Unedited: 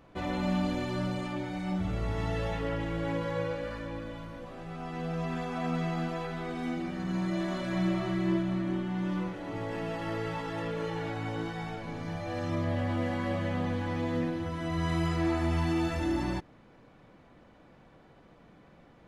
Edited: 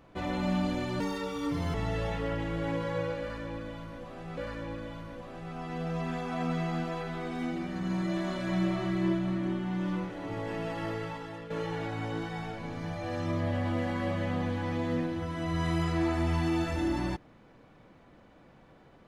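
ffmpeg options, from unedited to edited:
-filter_complex "[0:a]asplit=5[s0][s1][s2][s3][s4];[s0]atrim=end=1.004[s5];[s1]atrim=start=1:end=2.15,asetpts=PTS-STARTPTS,asetrate=68355,aresample=44100,atrim=end_sample=32719,asetpts=PTS-STARTPTS[s6];[s2]atrim=start=2.146:end=4.782[s7];[s3]atrim=start=3.608:end=10.74,asetpts=PTS-STARTPTS,afade=t=out:st=6.462:d=0.67:silence=0.281838[s8];[s4]atrim=start=10.74,asetpts=PTS-STARTPTS,afade=t=in:d=0.004:c=hsin:silence=0.281838[s9];[s5][s6]acrossfade=d=0.004:c1=hsin:c2=hsin[s10];[s10][s7]acrossfade=d=0.004:c1=hsin:c2=hsin[s11];[s8][s9]concat=n=2:v=0:a=1[s12];[s11][s12]acrossfade=d=0.004:c1=hsin:c2=hsin"

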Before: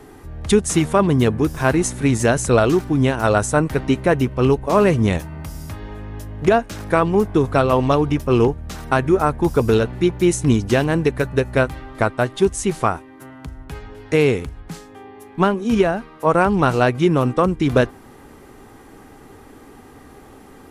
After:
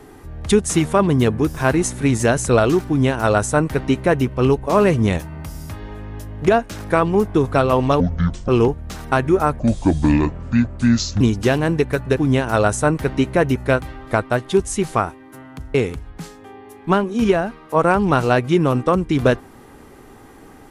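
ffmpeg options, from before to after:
-filter_complex "[0:a]asplit=8[s0][s1][s2][s3][s4][s5][s6][s7];[s0]atrim=end=8.004[s8];[s1]atrim=start=8:end=8.28,asetpts=PTS-STARTPTS,asetrate=25578,aresample=44100[s9];[s2]atrim=start=8.276:end=9.394[s10];[s3]atrim=start=9.39:end=10.47,asetpts=PTS-STARTPTS,asetrate=29547,aresample=44100[s11];[s4]atrim=start=10.466:end=11.432[s12];[s5]atrim=start=2.868:end=4.262[s13];[s6]atrim=start=11.428:end=13.622[s14];[s7]atrim=start=14.248[s15];[s8][s9]acrossfade=d=0.004:c1=hsin:c2=hsin[s16];[s16][s10]acrossfade=d=0.004:c1=hsin:c2=hsin[s17];[s17][s11]acrossfade=d=0.004:c1=hsin:c2=hsin[s18];[s18][s12]acrossfade=d=0.004:c1=hsin:c2=hsin[s19];[s19][s13]acrossfade=d=0.004:c1=hsin:c2=hsin[s20];[s20][s14]acrossfade=d=0.004:c1=hsin:c2=hsin[s21];[s21][s15]acrossfade=d=0.004:c1=hsin:c2=hsin"

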